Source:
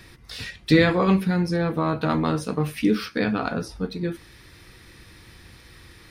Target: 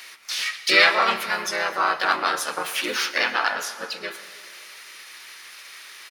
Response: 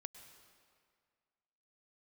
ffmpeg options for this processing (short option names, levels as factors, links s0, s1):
-filter_complex "[0:a]asplit=3[s0][s1][s2];[s1]asetrate=29433,aresample=44100,atempo=1.49831,volume=0.398[s3];[s2]asetrate=52444,aresample=44100,atempo=0.840896,volume=0.891[s4];[s0][s3][s4]amix=inputs=3:normalize=0,highpass=1100,asplit=2[s5][s6];[s6]equalizer=f=9700:t=o:w=0.27:g=3.5[s7];[1:a]atrim=start_sample=2205,lowshelf=f=180:g=-7.5[s8];[s7][s8]afir=irnorm=-1:irlink=0,volume=3.55[s9];[s5][s9]amix=inputs=2:normalize=0,volume=0.75"